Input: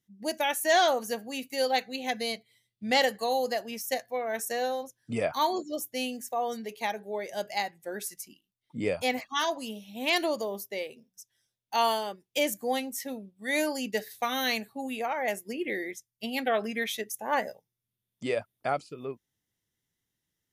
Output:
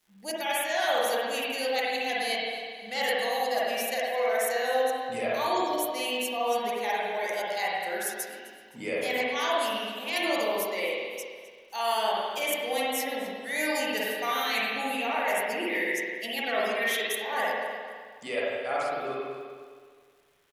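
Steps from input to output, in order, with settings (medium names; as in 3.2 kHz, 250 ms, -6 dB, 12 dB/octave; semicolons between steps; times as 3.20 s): high-pass 870 Hz 6 dB/octave; peaking EQ 11 kHz +5 dB 0.46 oct; reverse; compression 6:1, threshold -35 dBFS, peak gain reduction 13.5 dB; reverse; crackle 360 per s -61 dBFS; on a send: feedback delay 258 ms, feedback 37%, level -18.5 dB; on the sum: spring tank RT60 1.8 s, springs 46/52 ms, chirp 75 ms, DRR -6.5 dB; trim +4.5 dB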